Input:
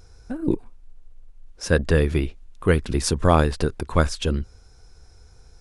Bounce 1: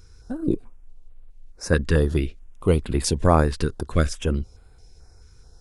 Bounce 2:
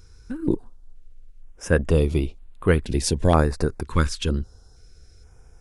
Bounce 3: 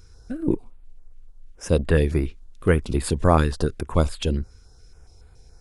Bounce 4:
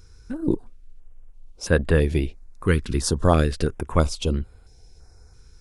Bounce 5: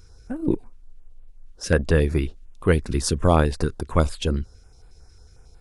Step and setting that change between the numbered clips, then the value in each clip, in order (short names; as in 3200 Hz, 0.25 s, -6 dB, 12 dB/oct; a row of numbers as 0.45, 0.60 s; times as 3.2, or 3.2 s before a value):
stepped notch, rate: 4.6, 2.1, 7.1, 3, 11 Hz